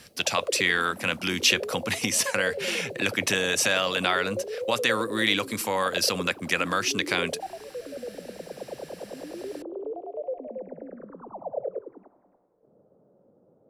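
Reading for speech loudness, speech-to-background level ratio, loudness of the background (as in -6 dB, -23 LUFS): -25.0 LUFS, 11.5 dB, -36.5 LUFS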